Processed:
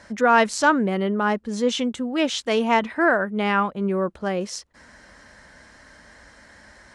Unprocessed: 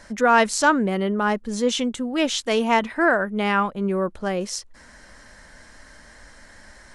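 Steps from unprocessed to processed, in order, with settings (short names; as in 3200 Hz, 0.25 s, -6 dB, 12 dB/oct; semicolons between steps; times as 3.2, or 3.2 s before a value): HPF 57 Hz; high shelf 8900 Hz -11.5 dB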